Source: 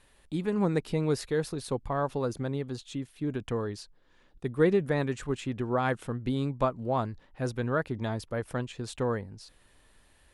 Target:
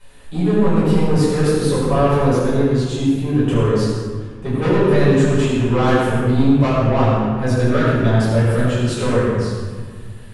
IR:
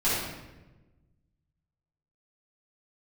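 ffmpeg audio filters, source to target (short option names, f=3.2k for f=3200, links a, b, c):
-filter_complex "[0:a]asettb=1/sr,asplit=3[a][b][c];[a]atrim=end=0.734[d];[b]atrim=start=0.73:end=1.32,asetpts=PTS-STARTPTS,afade=t=in:d=0.004:c=qsin,afade=t=out:st=0.586:d=0.004:c=qsin,acrossover=split=320[e][f];[f]acompressor=threshold=-32dB:ratio=6[g];[e][g]amix=inputs=2:normalize=0[h];[c]atrim=start=1.316[i];[d][h]acrossfade=d=0.004:c1=hsin:c2=qsin[j];[j][i]acrossfade=d=0.004:c1=qsin:c2=hsin,asoftclip=type=tanh:threshold=-27dB[k];[1:a]atrim=start_sample=2205,asetrate=26901,aresample=44100[l];[k][l]afir=irnorm=-1:irlink=0"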